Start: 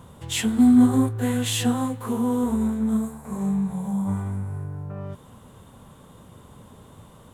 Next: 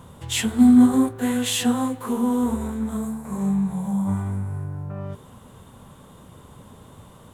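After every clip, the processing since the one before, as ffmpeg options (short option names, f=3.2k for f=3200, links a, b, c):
-af "bandreject=f=55.12:t=h:w=4,bandreject=f=110.24:t=h:w=4,bandreject=f=165.36:t=h:w=4,bandreject=f=220.48:t=h:w=4,bandreject=f=275.6:t=h:w=4,bandreject=f=330.72:t=h:w=4,bandreject=f=385.84:t=h:w=4,bandreject=f=440.96:t=h:w=4,bandreject=f=496.08:t=h:w=4,bandreject=f=551.2:t=h:w=4,bandreject=f=606.32:t=h:w=4,bandreject=f=661.44:t=h:w=4,bandreject=f=716.56:t=h:w=4,bandreject=f=771.68:t=h:w=4,volume=2dB"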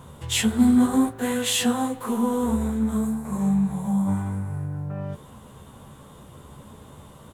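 -filter_complex "[0:a]asplit=2[a][b];[b]adelay=14,volume=-6.5dB[c];[a][c]amix=inputs=2:normalize=0"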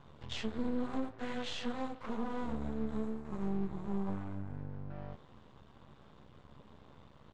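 -af "alimiter=limit=-16dB:level=0:latency=1:release=127,aeval=exprs='max(val(0),0)':c=same,lowpass=f=5.1k:w=0.5412,lowpass=f=5.1k:w=1.3066,volume=-8.5dB"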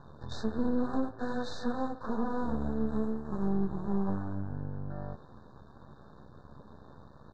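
-af "highshelf=f=6.2k:g=-12,afftfilt=real='re*(1-between(b*sr/4096,1800,3600))':imag='im*(1-between(b*sr/4096,1800,3600))':win_size=4096:overlap=0.75,volume=5.5dB"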